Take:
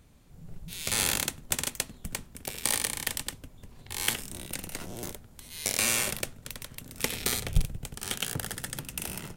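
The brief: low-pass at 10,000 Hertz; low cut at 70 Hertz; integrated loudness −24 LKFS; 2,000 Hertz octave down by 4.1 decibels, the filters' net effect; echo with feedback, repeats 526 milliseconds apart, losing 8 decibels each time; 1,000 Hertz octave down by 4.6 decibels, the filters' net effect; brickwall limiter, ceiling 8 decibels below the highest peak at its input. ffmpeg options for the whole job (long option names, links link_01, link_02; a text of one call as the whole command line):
ffmpeg -i in.wav -af "highpass=70,lowpass=10000,equalizer=frequency=1000:width_type=o:gain=-5,equalizer=frequency=2000:width_type=o:gain=-4,alimiter=limit=-17dB:level=0:latency=1,aecho=1:1:526|1052|1578|2104|2630:0.398|0.159|0.0637|0.0255|0.0102,volume=11.5dB" out.wav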